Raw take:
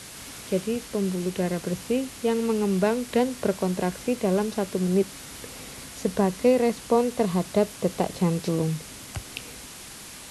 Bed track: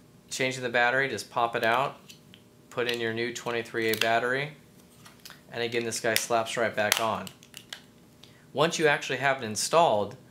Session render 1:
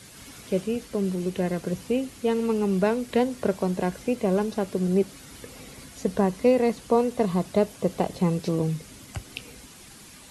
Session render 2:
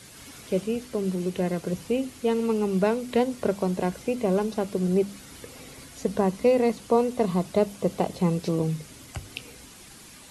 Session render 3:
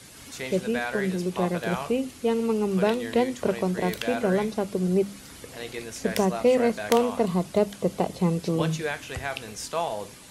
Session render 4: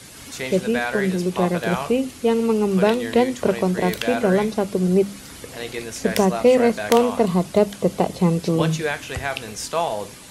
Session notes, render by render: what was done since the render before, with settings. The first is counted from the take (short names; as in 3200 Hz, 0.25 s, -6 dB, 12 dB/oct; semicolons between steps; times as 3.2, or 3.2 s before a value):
denoiser 8 dB, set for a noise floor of -42 dBFS
notches 50/100/150/200/250 Hz; dynamic EQ 1700 Hz, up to -4 dB, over -54 dBFS, Q 6.7
add bed track -7 dB
gain +5.5 dB; limiter -1 dBFS, peak gain reduction 1 dB